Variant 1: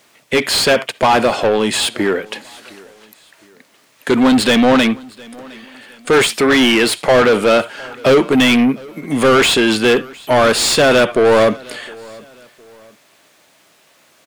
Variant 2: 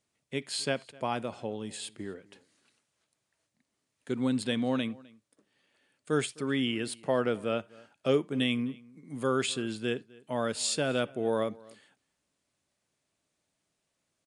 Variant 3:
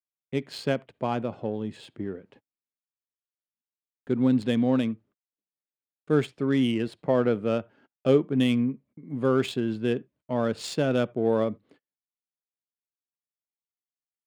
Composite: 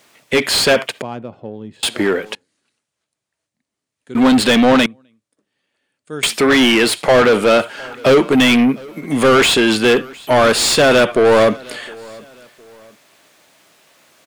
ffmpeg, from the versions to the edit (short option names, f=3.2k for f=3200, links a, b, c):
-filter_complex "[1:a]asplit=2[a][b];[0:a]asplit=4[c][d][e][f];[c]atrim=end=1.022[g];[2:a]atrim=start=1.018:end=1.832[h];[d]atrim=start=1.828:end=2.352[i];[a]atrim=start=2.348:end=4.152[j];[e]atrim=start=4.148:end=4.862[k];[b]atrim=start=4.858:end=6.232[l];[f]atrim=start=6.228[m];[g][h]acrossfade=d=0.004:c1=hsin:c2=hsin[n];[n][i]acrossfade=d=0.004:c1=hsin:c2=hsin[o];[o][j]acrossfade=d=0.004:c1=hsin:c2=hsin[p];[p][k]acrossfade=d=0.004:c1=hsin:c2=hsin[q];[q][l]acrossfade=d=0.004:c1=hsin:c2=hsin[r];[r][m]acrossfade=d=0.004:c1=hsin:c2=hsin"